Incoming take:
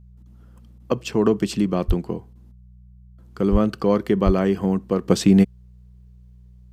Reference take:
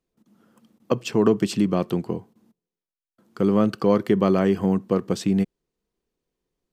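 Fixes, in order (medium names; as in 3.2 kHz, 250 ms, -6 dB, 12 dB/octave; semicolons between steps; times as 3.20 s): de-hum 61 Hz, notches 3; de-plosive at 1.87/3.51/4.25 s; trim 0 dB, from 5.08 s -7 dB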